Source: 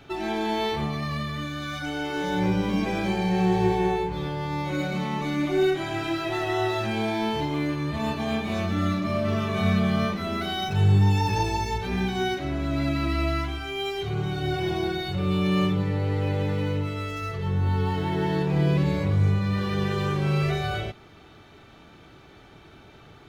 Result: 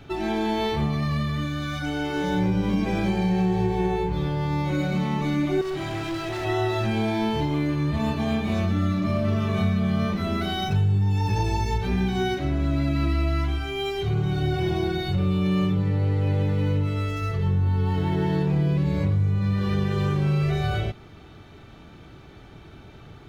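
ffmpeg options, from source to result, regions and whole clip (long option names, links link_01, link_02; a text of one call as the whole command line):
ffmpeg -i in.wav -filter_complex "[0:a]asettb=1/sr,asplit=3[link_01][link_02][link_03];[link_01]atrim=end=5.614[link_04];[link_02]atrim=start=5.61:end=6.45,asetpts=PTS-STARTPTS,afade=type=in:duration=0.004:curve=qsin,afade=type=out:start_time=0.836:duration=0.004:curve=qsin,equalizer=frequency=250:width_type=o:width=0.34:gain=-6,bandreject=frequency=1500:width=16,asoftclip=type=hard:threshold=-29dB[link_05];[link_03]atrim=start=6.446[link_06];[link_04][link_05]acrossfade=duration=0.004:curve1=hsin:curve2=qsin[link_07];[link_07][link_06]acrossfade=duration=0.004:curve1=qsin:curve2=hsin,lowshelf=frequency=240:gain=8.5,acompressor=threshold=-19dB:ratio=6" out.wav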